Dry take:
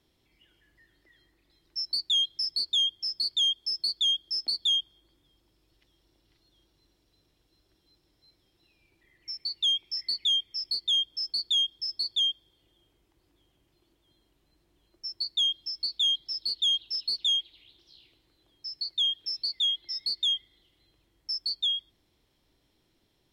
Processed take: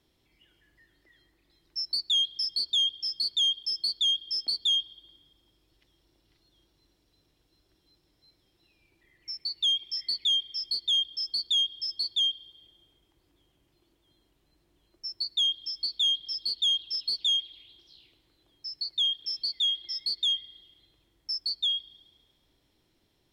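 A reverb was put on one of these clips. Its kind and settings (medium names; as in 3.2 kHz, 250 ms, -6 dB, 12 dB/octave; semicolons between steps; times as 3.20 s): spring tank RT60 1.4 s, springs 35/47 ms, chirp 70 ms, DRR 17.5 dB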